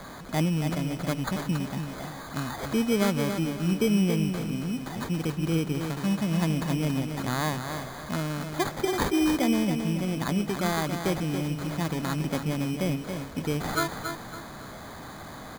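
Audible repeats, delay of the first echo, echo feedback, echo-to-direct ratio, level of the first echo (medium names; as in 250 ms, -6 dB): 3, 278 ms, 34%, -6.5 dB, -7.0 dB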